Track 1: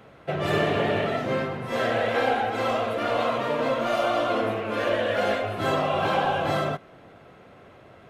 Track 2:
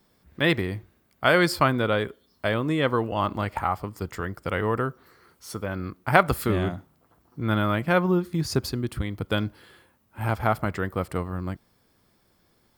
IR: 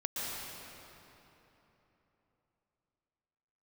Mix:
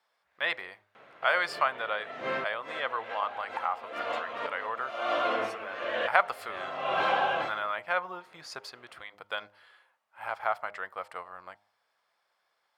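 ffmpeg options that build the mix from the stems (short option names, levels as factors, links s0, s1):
-filter_complex "[0:a]adelay=950,volume=1.06[s0];[1:a]lowshelf=f=430:t=q:w=1.5:g=-12,bandreject=f=102.3:t=h:w=4,bandreject=f=204.6:t=h:w=4,bandreject=f=306.9:t=h:w=4,bandreject=f=409.2:t=h:w=4,bandreject=f=511.5:t=h:w=4,bandreject=f=613.8:t=h:w=4,bandreject=f=716.1:t=h:w=4,bandreject=f=818.4:t=h:w=4,bandreject=f=920.7:t=h:w=4,volume=0.596,asplit=2[s1][s2];[s2]apad=whole_len=398855[s3];[s0][s3]sidechaincompress=threshold=0.00501:ratio=6:attack=26:release=233[s4];[s4][s1]amix=inputs=2:normalize=0,bandpass=f=1700:t=q:w=0.6:csg=0"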